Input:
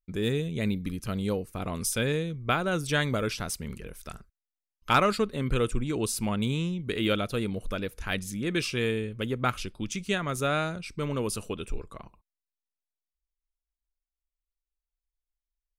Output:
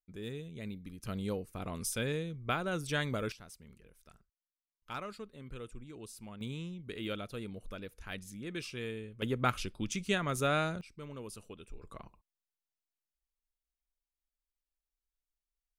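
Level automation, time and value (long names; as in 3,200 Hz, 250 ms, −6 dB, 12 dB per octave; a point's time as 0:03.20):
−14 dB
from 0:01.03 −7 dB
from 0:03.32 −19 dB
from 0:06.41 −12 dB
from 0:09.22 −3 dB
from 0:10.81 −15 dB
from 0:11.82 −4.5 dB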